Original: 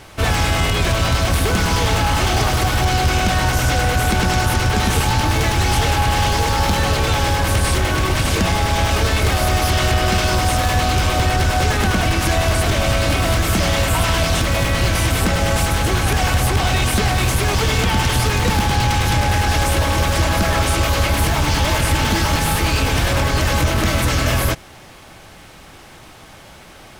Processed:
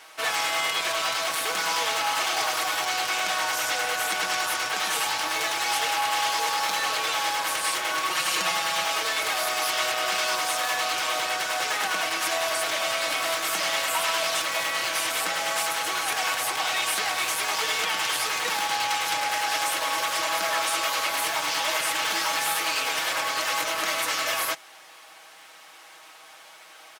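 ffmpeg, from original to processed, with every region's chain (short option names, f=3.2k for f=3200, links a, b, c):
-filter_complex "[0:a]asettb=1/sr,asplit=3[a][b][c];[a]atrim=end=8.104[d];[b]atrim=start=8.1:end=8.86,asetpts=PTS-STARTPTS,afade=t=in:d=0.004:c=qsin,afade=t=out:st=0.756:d=0.004:c=qsin,highpass=67,asubboost=boost=11.5:cutoff=160,aecho=1:1:5.6:0.68,atrim=end_sample=33516[e];[c]atrim=start=8.856[f];[d][e]acrossfade=d=0.004:c1=hsin:c2=qsin[g];[g][f]acrossfade=d=0.004:c1=qsin:c2=hsin,highpass=780,aecho=1:1:6.3:0.53,volume=-5dB"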